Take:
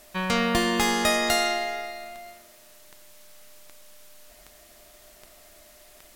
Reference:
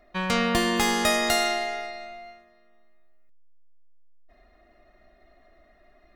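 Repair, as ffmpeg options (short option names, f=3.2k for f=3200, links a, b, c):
-af "adeclick=t=4,bandreject=f=600:w=30,afwtdn=0.0022"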